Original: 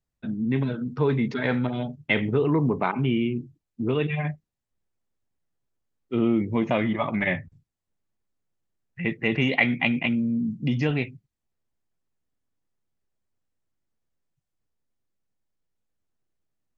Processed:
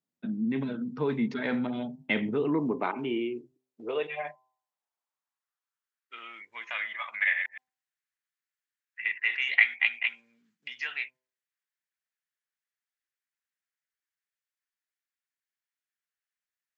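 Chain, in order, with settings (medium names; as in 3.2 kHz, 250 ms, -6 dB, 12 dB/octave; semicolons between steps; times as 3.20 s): 7.23–9.35 s: chunks repeated in reverse 116 ms, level -6 dB; de-hum 128.4 Hz, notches 8; dynamic bell 260 Hz, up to -5 dB, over -37 dBFS, Q 0.82; high-pass sweep 220 Hz -> 1.7 kHz, 2.31–6.23 s; trim -5 dB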